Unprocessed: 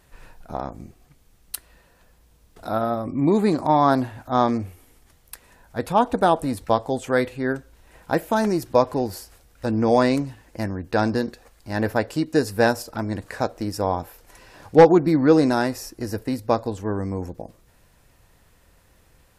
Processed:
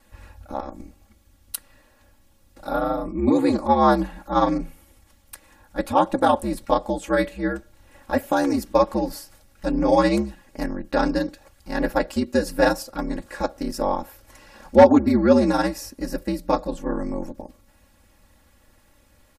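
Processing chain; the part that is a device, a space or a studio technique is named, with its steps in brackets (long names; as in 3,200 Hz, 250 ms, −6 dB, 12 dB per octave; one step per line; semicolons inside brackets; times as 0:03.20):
ring-modulated robot voice (ring modulation 70 Hz; comb filter 3.6 ms, depth 99%)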